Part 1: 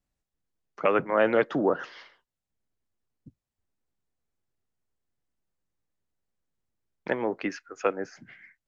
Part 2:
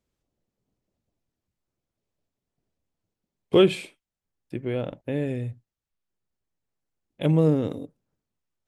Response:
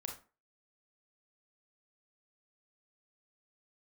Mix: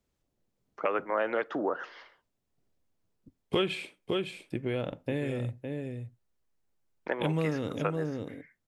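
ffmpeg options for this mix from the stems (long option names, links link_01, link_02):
-filter_complex "[0:a]equalizer=frequency=140:width=0.9:gain=-12,dynaudnorm=framelen=140:gausssize=9:maxgain=3dB,highshelf=frequency=2000:gain=-9.5,volume=-1.5dB,asplit=2[link_01][link_02];[link_02]volume=-21dB[link_03];[1:a]volume=-0.5dB,asplit=3[link_04][link_05][link_06];[link_05]volume=-15.5dB[link_07];[link_06]volume=-8dB[link_08];[2:a]atrim=start_sample=2205[link_09];[link_03][link_07]amix=inputs=2:normalize=0[link_10];[link_10][link_09]afir=irnorm=-1:irlink=0[link_11];[link_08]aecho=0:1:559:1[link_12];[link_01][link_04][link_11][link_12]amix=inputs=4:normalize=0,acrossover=split=1000|3900[link_13][link_14][link_15];[link_13]acompressor=threshold=-29dB:ratio=4[link_16];[link_14]acompressor=threshold=-31dB:ratio=4[link_17];[link_15]acompressor=threshold=-51dB:ratio=4[link_18];[link_16][link_17][link_18]amix=inputs=3:normalize=0"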